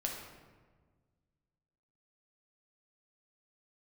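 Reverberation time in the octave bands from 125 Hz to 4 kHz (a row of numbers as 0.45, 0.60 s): 2.3, 2.0, 1.6, 1.4, 1.2, 0.85 s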